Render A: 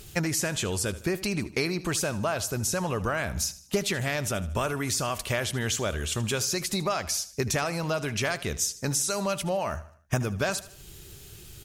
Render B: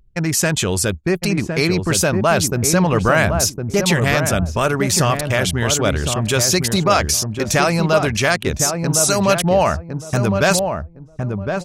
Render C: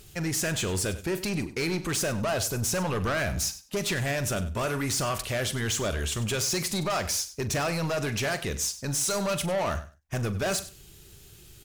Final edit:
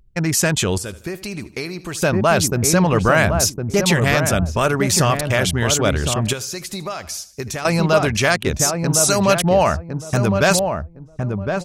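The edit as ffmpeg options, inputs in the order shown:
ffmpeg -i take0.wav -i take1.wav -filter_complex "[0:a]asplit=2[link_01][link_02];[1:a]asplit=3[link_03][link_04][link_05];[link_03]atrim=end=0.782[link_06];[link_01]atrim=start=0.778:end=2.022[link_07];[link_04]atrim=start=2.018:end=6.332[link_08];[link_02]atrim=start=6.328:end=7.652[link_09];[link_05]atrim=start=7.648[link_10];[link_06][link_07]acrossfade=duration=0.004:curve1=hsin:curve2=hsin[link_11];[link_11][link_08]acrossfade=duration=0.004:curve1=hsin:curve2=hsin[link_12];[link_12][link_09]acrossfade=duration=0.004:curve1=hsin:curve2=hsin[link_13];[link_13][link_10]acrossfade=duration=0.004:curve1=hsin:curve2=hsin" out.wav

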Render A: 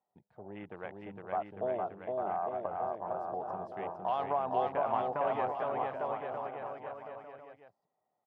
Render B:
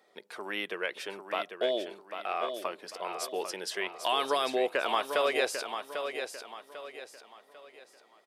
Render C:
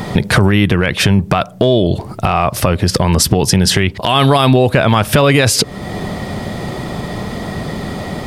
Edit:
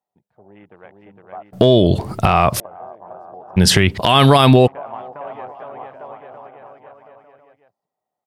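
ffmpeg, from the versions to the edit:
ffmpeg -i take0.wav -i take1.wav -i take2.wav -filter_complex "[2:a]asplit=2[link_01][link_02];[0:a]asplit=3[link_03][link_04][link_05];[link_03]atrim=end=1.532[link_06];[link_01]atrim=start=1.528:end=2.602[link_07];[link_04]atrim=start=2.598:end=3.58[link_08];[link_02]atrim=start=3.56:end=4.68[link_09];[link_05]atrim=start=4.66[link_10];[link_06][link_07]acrossfade=duration=0.004:curve1=hsin:curve2=hsin[link_11];[link_11][link_08]acrossfade=duration=0.004:curve1=hsin:curve2=hsin[link_12];[link_12][link_09]acrossfade=duration=0.02:curve1=tri:curve2=tri[link_13];[link_13][link_10]acrossfade=duration=0.02:curve1=tri:curve2=tri" out.wav

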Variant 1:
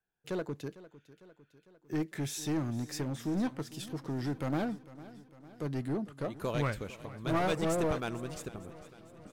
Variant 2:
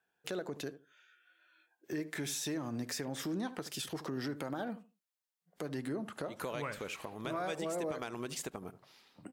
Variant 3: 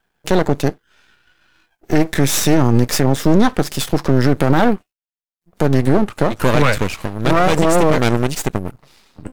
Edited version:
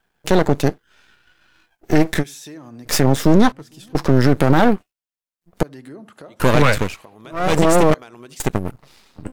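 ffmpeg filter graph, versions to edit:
ffmpeg -i take0.wav -i take1.wav -i take2.wav -filter_complex "[1:a]asplit=4[link_01][link_02][link_03][link_04];[2:a]asplit=6[link_05][link_06][link_07][link_08][link_09][link_10];[link_05]atrim=end=2.24[link_11];[link_01]atrim=start=2.18:end=2.91[link_12];[link_06]atrim=start=2.85:end=3.522[link_13];[0:a]atrim=start=3.518:end=3.952[link_14];[link_07]atrim=start=3.948:end=5.632[link_15];[link_02]atrim=start=5.628:end=6.402[link_16];[link_08]atrim=start=6.398:end=7.02[link_17];[link_03]atrim=start=6.78:end=7.56[link_18];[link_09]atrim=start=7.32:end=7.942[link_19];[link_04]atrim=start=7.938:end=8.402[link_20];[link_10]atrim=start=8.398[link_21];[link_11][link_12]acrossfade=duration=0.06:curve1=tri:curve2=tri[link_22];[link_22][link_13]acrossfade=duration=0.06:curve1=tri:curve2=tri[link_23];[link_23][link_14]acrossfade=duration=0.004:curve1=hsin:curve2=hsin[link_24];[link_24][link_15]acrossfade=duration=0.004:curve1=hsin:curve2=hsin[link_25];[link_25][link_16]acrossfade=duration=0.004:curve1=hsin:curve2=hsin[link_26];[link_26][link_17]acrossfade=duration=0.004:curve1=hsin:curve2=hsin[link_27];[link_27][link_18]acrossfade=duration=0.24:curve1=tri:curve2=tri[link_28];[link_28][link_19]acrossfade=duration=0.24:curve1=tri:curve2=tri[link_29];[link_29][link_20]acrossfade=duration=0.004:curve1=hsin:curve2=hsin[link_30];[link_30][link_21]acrossfade=duration=0.004:curve1=hsin:curve2=hsin" out.wav

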